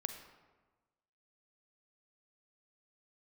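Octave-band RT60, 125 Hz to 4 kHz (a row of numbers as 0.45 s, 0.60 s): 1.4 s, 1.4 s, 1.3 s, 1.3 s, 1.0 s, 0.75 s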